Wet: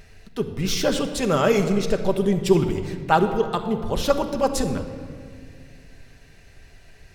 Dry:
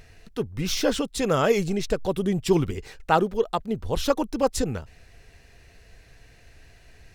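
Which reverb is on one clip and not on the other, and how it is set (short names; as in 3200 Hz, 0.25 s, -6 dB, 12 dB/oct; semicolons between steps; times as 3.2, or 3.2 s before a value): shoebox room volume 3500 m³, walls mixed, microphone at 1.2 m; gain +1 dB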